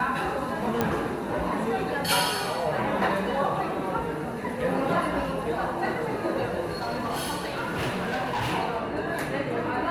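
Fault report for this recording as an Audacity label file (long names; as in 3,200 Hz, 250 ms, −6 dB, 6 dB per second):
0.810000	0.810000	click −10 dBFS
6.710000	8.530000	clipping −25 dBFS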